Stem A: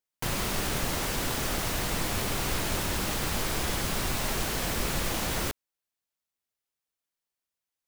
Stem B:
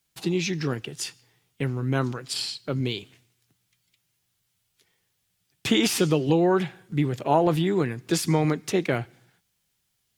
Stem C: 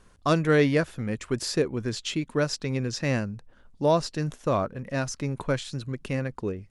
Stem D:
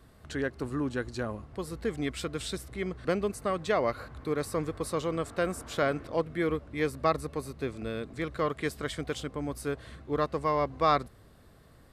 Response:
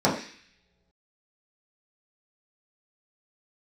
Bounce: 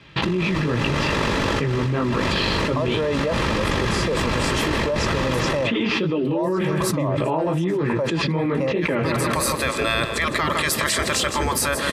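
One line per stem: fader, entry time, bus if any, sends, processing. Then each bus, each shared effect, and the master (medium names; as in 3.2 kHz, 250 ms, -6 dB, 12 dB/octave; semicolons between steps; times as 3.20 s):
-2.5 dB, 0.00 s, no send, echo send -6.5 dB, low-pass 3.4 kHz 12 dB/octave; ring modulator 24 Hz; auto duck -9 dB, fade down 1.10 s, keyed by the second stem
-2.0 dB, 0.00 s, no send, echo send -17.5 dB, low-pass 3.2 kHz 24 dB/octave; chorus 2.6 Hz, delay 16.5 ms, depth 5.3 ms
-18.5 dB, 2.50 s, no send, no echo send, high-order bell 730 Hz +14.5 dB 1.3 oct
-12.0 dB, 2.00 s, no send, echo send -13 dB, spectral gate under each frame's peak -10 dB weak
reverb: none
echo: feedback delay 159 ms, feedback 27%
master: comb of notches 730 Hz; level flattener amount 100%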